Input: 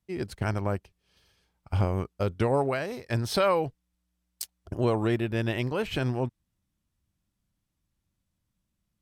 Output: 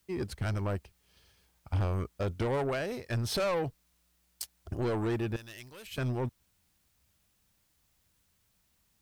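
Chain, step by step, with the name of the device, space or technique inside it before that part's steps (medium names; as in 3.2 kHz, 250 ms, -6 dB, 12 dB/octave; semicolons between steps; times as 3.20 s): open-reel tape (saturation -26.5 dBFS, distortion -8 dB; peaking EQ 69 Hz +4.5 dB; white noise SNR 39 dB); 5.36–5.98 s: pre-emphasis filter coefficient 0.9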